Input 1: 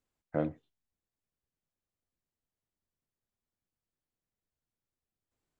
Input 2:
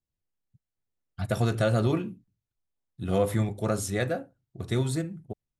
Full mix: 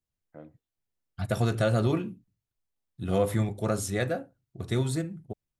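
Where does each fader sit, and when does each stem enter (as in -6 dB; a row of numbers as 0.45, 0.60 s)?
-16.0, -0.5 dB; 0.00, 0.00 s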